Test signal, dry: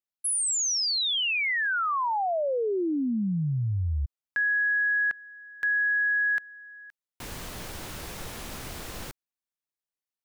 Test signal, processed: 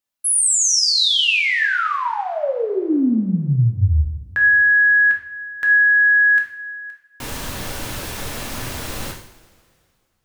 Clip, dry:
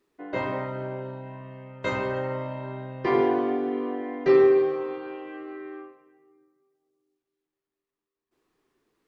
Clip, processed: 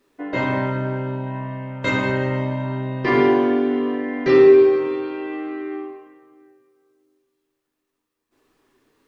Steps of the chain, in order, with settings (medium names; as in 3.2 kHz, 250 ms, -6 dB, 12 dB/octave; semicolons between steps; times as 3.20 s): dynamic bell 770 Hz, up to -7 dB, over -42 dBFS, Q 0.82; two-slope reverb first 0.6 s, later 2.3 s, from -18 dB, DRR 0.5 dB; trim +7.5 dB